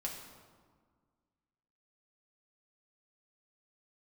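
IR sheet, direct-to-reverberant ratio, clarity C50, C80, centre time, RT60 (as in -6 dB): -2.0 dB, 5.0 dB, 6.5 dB, 46 ms, 1.7 s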